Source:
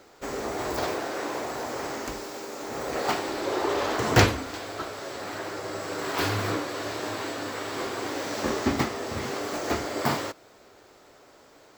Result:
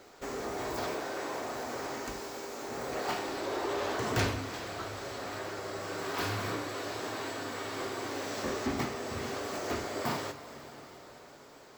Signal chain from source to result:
coupled-rooms reverb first 0.32 s, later 4.5 s, from −18 dB, DRR 6 dB
in parallel at 0 dB: downward compressor, threshold −41 dBFS, peak gain reduction 26.5 dB
on the sum: soft clipping −16 dBFS, distortion −13 dB
level −7.5 dB

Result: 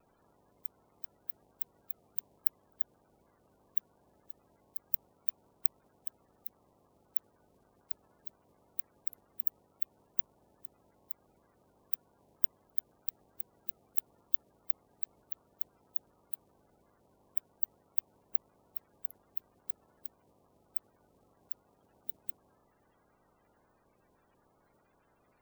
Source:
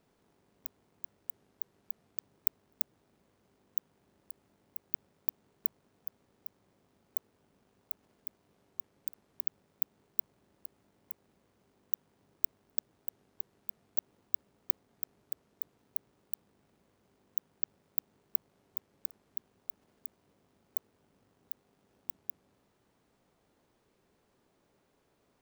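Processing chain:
spectral magnitudes quantised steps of 30 dB
pitch vibrato 0.61 Hz 14 cents
level +3 dB

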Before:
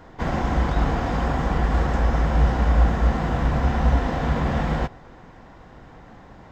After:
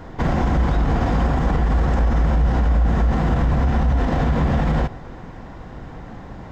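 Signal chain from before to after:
low-shelf EQ 340 Hz +6 dB
brickwall limiter −16.5 dBFS, peak gain reduction 13.5 dB
level +5.5 dB

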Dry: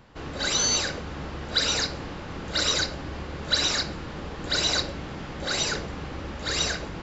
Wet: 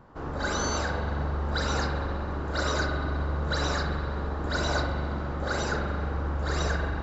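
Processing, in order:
high shelf with overshoot 1,800 Hz −10.5 dB, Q 1.5
spring reverb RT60 2.1 s, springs 42 ms, chirp 25 ms, DRR 3 dB

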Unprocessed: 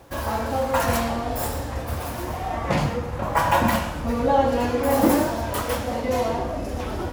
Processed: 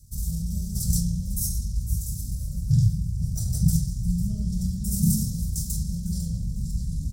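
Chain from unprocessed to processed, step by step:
dynamic equaliser 270 Hz, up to +5 dB, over −35 dBFS, Q 0.78
elliptic band-stop filter 190–7,500 Hz, stop band 40 dB
pitch shifter −5 semitones
delay with a high-pass on its return 501 ms, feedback 37%, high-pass 5,200 Hz, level −13.5 dB
convolution reverb RT60 0.60 s, pre-delay 3 ms, DRR 14.5 dB
level +4 dB

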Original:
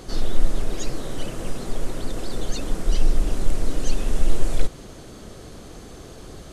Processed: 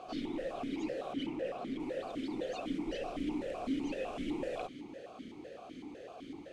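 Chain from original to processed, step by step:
0:01.13–0:01.80: slack as between gear wheels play −39.5 dBFS
formant filter that steps through the vowels 7.9 Hz
level +6 dB

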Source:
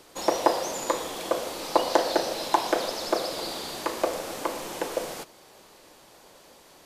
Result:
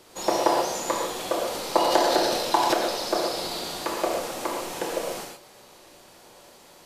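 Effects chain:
reverb whose tail is shaped and stops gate 160 ms flat, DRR −1 dB
0:01.47–0:02.74: transient designer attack +1 dB, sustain +8 dB
level −1.5 dB

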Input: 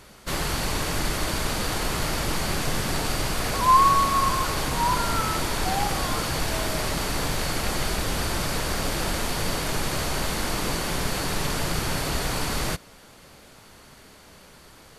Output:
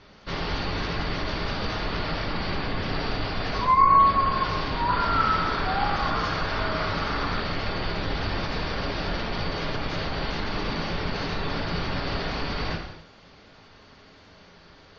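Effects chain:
stylus tracing distortion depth 0.066 ms
low-pass filter 5,200 Hz 24 dB per octave
gate on every frequency bin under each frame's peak −30 dB strong
0:04.88–0:07.41: parametric band 1,300 Hz +8 dB 0.57 octaves
reverb whose tail is shaped and stops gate 310 ms falling, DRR 1.5 dB
level −3.5 dB

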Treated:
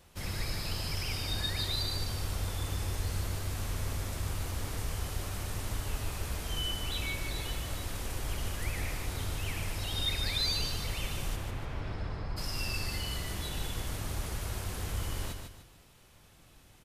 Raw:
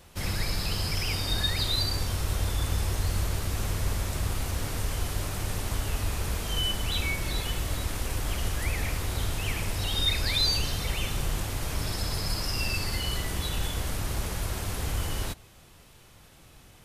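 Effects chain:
0:11.35–0:12.36: low-pass filter 3,100 Hz → 1,600 Hz 12 dB per octave
repeating echo 148 ms, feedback 35%, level −6 dB
level −6.5 dB

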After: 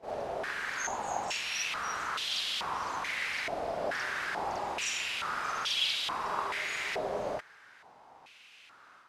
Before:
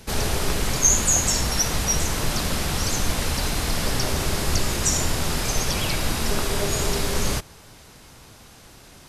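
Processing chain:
automatic gain control gain up to 3 dB
on a send: backwards echo 46 ms −3.5 dB
on the sum: band-pass on a step sequencer 2.3 Hz 650–3,300 Hz

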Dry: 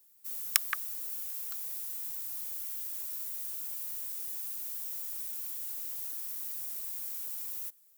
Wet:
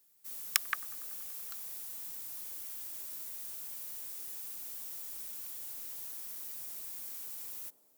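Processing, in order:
high-shelf EQ 8,700 Hz −5.5 dB
delay with a band-pass on its return 95 ms, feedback 78%, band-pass 400 Hz, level −11 dB

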